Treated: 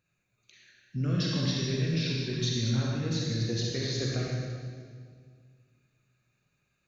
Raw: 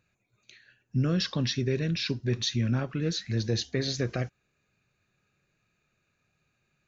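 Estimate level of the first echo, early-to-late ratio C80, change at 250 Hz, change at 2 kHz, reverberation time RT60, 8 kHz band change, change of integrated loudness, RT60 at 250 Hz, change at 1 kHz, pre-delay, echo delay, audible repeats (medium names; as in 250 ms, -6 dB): no echo, 0.0 dB, -1.0 dB, -1.5 dB, 1.9 s, no reading, -1.0 dB, 2.3 s, -2.0 dB, 38 ms, no echo, no echo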